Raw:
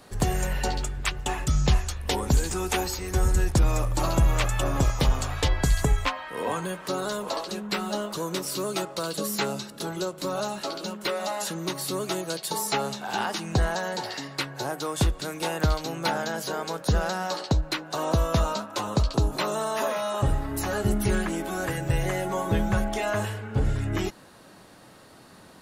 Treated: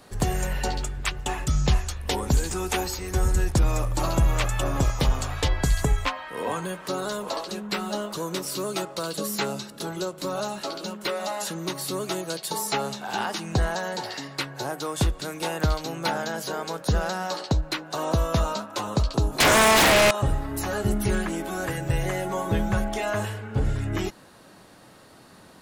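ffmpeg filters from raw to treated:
-filter_complex "[0:a]asettb=1/sr,asplit=3[s0][s1][s2];[s0]atrim=end=19.404[s3];[s1]atrim=start=19.4:end=20.11,asetpts=PTS-STARTPTS,afade=t=in:d=0.004:c=qsin,afade=t=out:st=0.706:d=0.004:c=qsin,aeval=exprs='0.2*sin(PI/2*5.62*val(0)/0.2)':c=same[s4];[s2]atrim=start=20.106[s5];[s3][s4]acrossfade=d=0.004:c1=hsin:c2=qsin[s6];[s6][s5]acrossfade=d=0.004:c1=qsin:c2=hsin"

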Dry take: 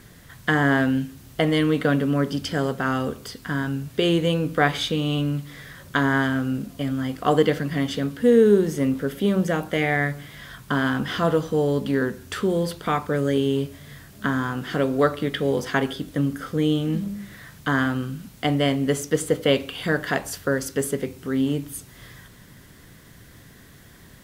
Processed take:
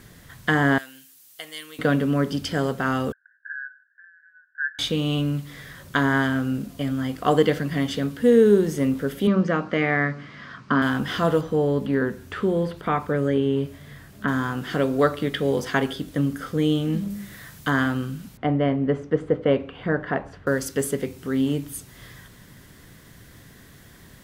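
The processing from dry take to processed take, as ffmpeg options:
-filter_complex "[0:a]asettb=1/sr,asplit=3[s0][s1][s2];[s0]atrim=end=0.784[s3];[s1]atrim=start=0.78:end=1.79,asetpts=PTS-STARTPTS,afade=t=in:d=0.004:c=qsin,afade=t=out:st=1.006:d=0.004:c=qsin,aderivative[s4];[s2]atrim=start=1.786[s5];[s3][s4]acrossfade=d=0.004:c1=hsin:c2=qsin[s6];[s6][s5]acrossfade=d=0.004:c1=qsin:c2=hsin,asettb=1/sr,asplit=3[s7][s8][s9];[s7]atrim=end=3.124[s10];[s8]atrim=start=3.12:end=4.79,asetpts=PTS-STARTPTS,afade=t=in:d=0.004:c=qsin,afade=t=out:st=1.666:d=0.004:c=qsin,asuperpass=centerf=1600:order=8:qfactor=6[s11];[s9]atrim=start=4.786[s12];[s10][s11]acrossfade=d=0.004:c1=hsin:c2=qsin[s13];[s13][s12]acrossfade=d=0.004:c1=qsin:c2=hsin,asettb=1/sr,asplit=3[s14][s15][s16];[s14]atrim=end=9.274[s17];[s15]atrim=start=9.27:end=10.82,asetpts=PTS-STARTPTS,afade=t=in:d=0.004:c=qsin,afade=t=out:st=1.546:d=0.004:c=qsin,highpass=120,equalizer=f=240:t=q:w=4:g=8,equalizer=f=780:t=q:w=4:g=-3,equalizer=f=1200:t=q:w=4:g=8,equalizer=f=3500:t=q:w=4:g=-8,lowpass=f=5000:w=0.5412,lowpass=f=5000:w=1.3066[s18];[s16]atrim=start=10.816[s19];[s17][s18]acrossfade=d=0.004:c1=hsin:c2=qsin[s20];[s20][s19]acrossfade=d=0.004:c1=qsin:c2=hsin,asettb=1/sr,asplit=3[s21][s22][s23];[s21]atrim=end=11.414[s24];[s22]atrim=start=11.41:end=14.28,asetpts=PTS-STARTPTS,afade=t=in:d=0.004:c=qsin,afade=t=out:st=2.866:d=0.004:c=qsin,acrossover=split=2800[s25][s26];[s26]acompressor=threshold=0.002:ratio=4:attack=1:release=60[s27];[s25][s27]amix=inputs=2:normalize=0[s28];[s23]atrim=start=14.276[s29];[s24][s28]acrossfade=d=0.004:c1=hsin:c2=qsin[s30];[s30][s29]acrossfade=d=0.004:c1=qsin:c2=hsin,asettb=1/sr,asplit=3[s31][s32][s33];[s31]atrim=end=17.104[s34];[s32]atrim=start=17.1:end=17.7,asetpts=PTS-STARTPTS,afade=t=in:d=0.004:c=qsin,afade=t=out:st=0.596:d=0.004:c=qsin,highshelf=f=6600:g=6.5[s35];[s33]atrim=start=17.696[s36];[s34][s35]acrossfade=d=0.004:c1=hsin:c2=qsin[s37];[s37][s36]acrossfade=d=0.004:c1=qsin:c2=hsin,asettb=1/sr,asplit=3[s38][s39][s40];[s38]atrim=end=18.374[s41];[s39]atrim=start=18.37:end=20.47,asetpts=PTS-STARTPTS,afade=t=in:d=0.004:c=qsin,afade=t=out:st=2.096:d=0.004:c=qsin,lowpass=1500[s42];[s40]atrim=start=20.466[s43];[s41][s42]acrossfade=d=0.004:c1=hsin:c2=qsin[s44];[s44][s43]acrossfade=d=0.004:c1=qsin:c2=hsin"

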